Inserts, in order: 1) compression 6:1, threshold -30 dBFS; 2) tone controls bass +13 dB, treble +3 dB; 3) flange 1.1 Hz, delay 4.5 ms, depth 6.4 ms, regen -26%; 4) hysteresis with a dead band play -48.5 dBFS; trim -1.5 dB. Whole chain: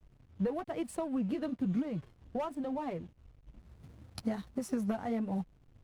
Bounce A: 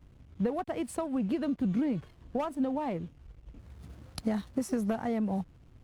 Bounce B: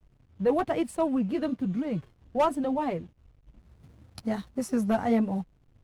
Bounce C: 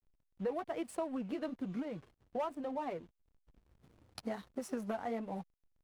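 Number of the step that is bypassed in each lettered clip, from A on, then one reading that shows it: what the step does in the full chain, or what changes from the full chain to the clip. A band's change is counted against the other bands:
3, loudness change +3.5 LU; 1, crest factor change +2.5 dB; 2, 125 Hz band -8.5 dB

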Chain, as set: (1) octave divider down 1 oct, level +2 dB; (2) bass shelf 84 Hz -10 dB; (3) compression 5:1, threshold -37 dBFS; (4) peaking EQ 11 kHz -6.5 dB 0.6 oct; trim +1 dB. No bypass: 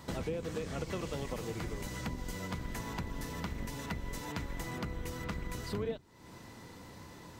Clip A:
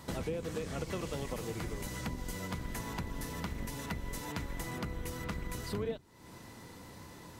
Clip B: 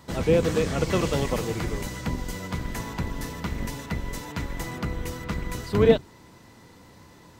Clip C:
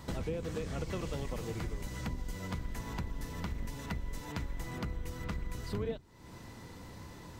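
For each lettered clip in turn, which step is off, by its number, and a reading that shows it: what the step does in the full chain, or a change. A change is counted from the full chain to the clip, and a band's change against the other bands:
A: 4, 8 kHz band +2.0 dB; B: 3, mean gain reduction 8.0 dB; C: 2, 125 Hz band +3.5 dB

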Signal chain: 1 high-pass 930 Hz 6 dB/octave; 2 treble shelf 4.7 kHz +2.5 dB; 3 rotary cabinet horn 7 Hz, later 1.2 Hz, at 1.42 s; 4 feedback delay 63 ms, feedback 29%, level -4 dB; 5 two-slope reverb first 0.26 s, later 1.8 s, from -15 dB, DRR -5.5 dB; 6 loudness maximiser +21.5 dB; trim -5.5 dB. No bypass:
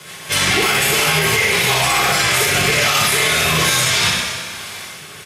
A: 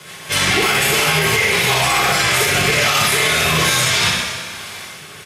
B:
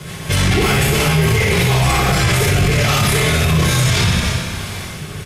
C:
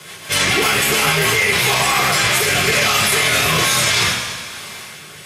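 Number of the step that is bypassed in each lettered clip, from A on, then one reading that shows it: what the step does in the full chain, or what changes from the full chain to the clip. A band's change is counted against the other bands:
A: 2, 8 kHz band -1.5 dB; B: 1, 125 Hz band +14.0 dB; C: 4, momentary loudness spread change +2 LU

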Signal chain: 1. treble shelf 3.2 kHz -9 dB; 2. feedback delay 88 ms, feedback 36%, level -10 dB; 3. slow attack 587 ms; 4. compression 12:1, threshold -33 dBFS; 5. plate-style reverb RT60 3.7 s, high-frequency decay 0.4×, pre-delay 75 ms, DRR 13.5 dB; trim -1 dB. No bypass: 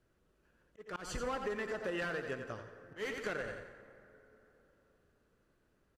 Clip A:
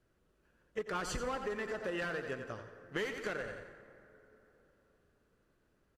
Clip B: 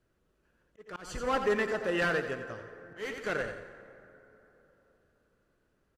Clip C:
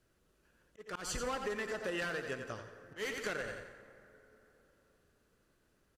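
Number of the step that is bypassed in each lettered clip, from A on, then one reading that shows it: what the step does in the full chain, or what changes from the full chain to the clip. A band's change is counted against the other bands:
3, 8 kHz band +1.5 dB; 4, mean gain reduction 4.0 dB; 1, 8 kHz band +7.0 dB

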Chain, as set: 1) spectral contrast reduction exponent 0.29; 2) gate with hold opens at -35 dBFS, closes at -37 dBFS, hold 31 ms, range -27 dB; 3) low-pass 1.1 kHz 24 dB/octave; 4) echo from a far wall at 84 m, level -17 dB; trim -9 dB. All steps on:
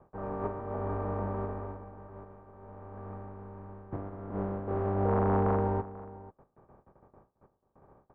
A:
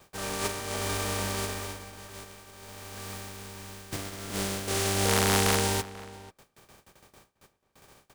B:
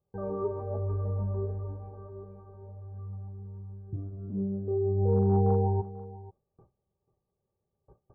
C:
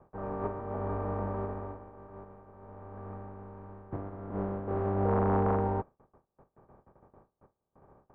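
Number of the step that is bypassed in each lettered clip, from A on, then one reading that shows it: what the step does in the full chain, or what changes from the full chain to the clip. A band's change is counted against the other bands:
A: 3, 2 kHz band +16.0 dB; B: 1, 1 kHz band -6.0 dB; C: 4, echo-to-direct -18.5 dB to none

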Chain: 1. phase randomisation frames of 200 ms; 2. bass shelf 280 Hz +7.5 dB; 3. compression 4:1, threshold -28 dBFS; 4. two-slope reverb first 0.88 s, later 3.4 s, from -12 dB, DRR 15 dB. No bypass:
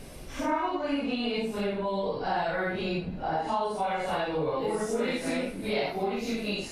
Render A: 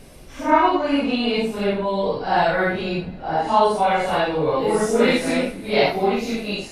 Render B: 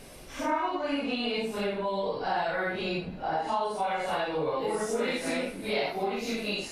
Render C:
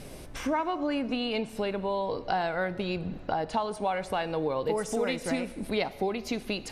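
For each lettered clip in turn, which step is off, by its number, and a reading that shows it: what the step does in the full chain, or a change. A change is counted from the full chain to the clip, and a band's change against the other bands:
3, mean gain reduction 7.5 dB; 2, 125 Hz band -4.5 dB; 1, 8 kHz band +2.0 dB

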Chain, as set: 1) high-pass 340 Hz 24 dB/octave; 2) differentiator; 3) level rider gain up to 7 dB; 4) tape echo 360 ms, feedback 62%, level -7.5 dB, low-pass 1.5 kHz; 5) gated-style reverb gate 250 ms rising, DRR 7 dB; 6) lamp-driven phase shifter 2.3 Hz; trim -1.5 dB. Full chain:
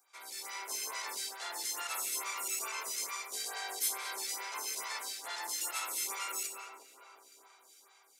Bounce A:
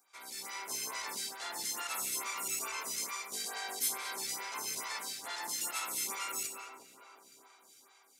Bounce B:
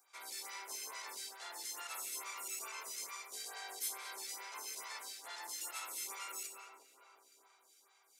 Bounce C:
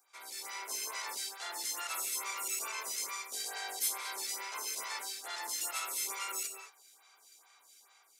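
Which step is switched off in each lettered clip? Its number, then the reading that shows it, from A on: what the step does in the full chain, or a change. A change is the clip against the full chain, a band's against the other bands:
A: 1, 250 Hz band +5.5 dB; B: 3, momentary loudness spread change -4 LU; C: 4, momentary loudness spread change -3 LU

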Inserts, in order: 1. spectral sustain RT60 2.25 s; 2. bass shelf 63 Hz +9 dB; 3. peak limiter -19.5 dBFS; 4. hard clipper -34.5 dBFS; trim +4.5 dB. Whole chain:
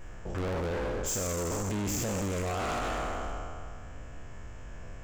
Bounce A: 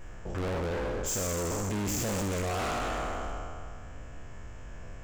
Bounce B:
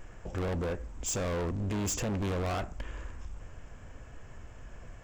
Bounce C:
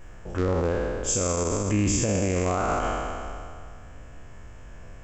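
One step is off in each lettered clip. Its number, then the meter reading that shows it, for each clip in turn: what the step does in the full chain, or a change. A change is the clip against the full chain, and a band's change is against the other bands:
3, mean gain reduction 1.5 dB; 1, loudness change -1.0 LU; 4, distortion -5 dB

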